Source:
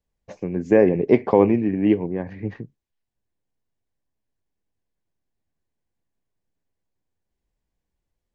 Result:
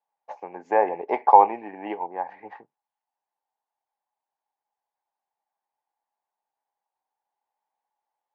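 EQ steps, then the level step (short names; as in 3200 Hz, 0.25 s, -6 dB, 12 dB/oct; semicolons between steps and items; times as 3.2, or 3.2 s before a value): resonant high-pass 840 Hz, resonance Q 9; LPF 1500 Hz 6 dB/oct; -1.0 dB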